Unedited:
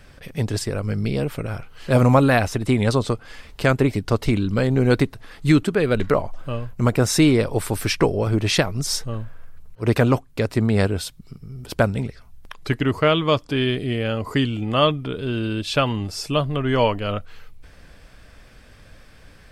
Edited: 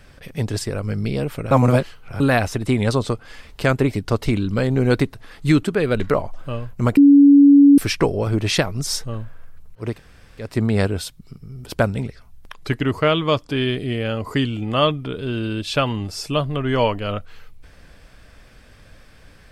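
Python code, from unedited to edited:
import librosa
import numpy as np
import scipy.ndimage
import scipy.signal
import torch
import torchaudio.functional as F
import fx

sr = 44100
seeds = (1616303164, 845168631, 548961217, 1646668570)

y = fx.edit(x, sr, fx.reverse_span(start_s=1.51, length_s=0.69),
    fx.bleep(start_s=6.97, length_s=0.81, hz=283.0, db=-6.0),
    fx.room_tone_fill(start_s=9.88, length_s=0.59, crossfade_s=0.24), tone=tone)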